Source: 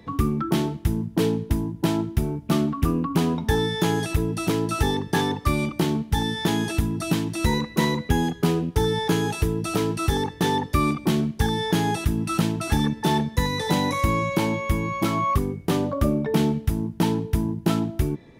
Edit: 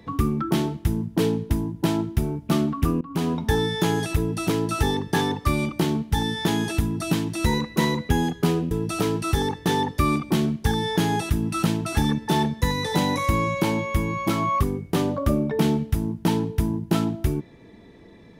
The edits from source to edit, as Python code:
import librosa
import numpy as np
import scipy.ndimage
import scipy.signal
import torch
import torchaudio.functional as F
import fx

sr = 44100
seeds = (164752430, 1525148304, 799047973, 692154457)

y = fx.edit(x, sr, fx.fade_in_from(start_s=3.01, length_s=0.42, curve='qsin', floor_db=-23.0),
    fx.cut(start_s=8.71, length_s=0.75), tone=tone)